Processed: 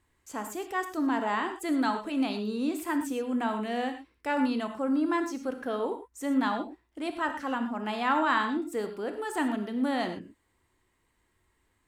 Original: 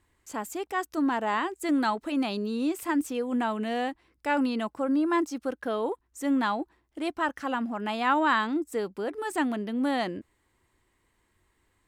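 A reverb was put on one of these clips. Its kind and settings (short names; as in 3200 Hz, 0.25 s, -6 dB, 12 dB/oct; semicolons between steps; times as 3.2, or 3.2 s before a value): non-linear reverb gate 0.14 s flat, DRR 6.5 dB; gain -2.5 dB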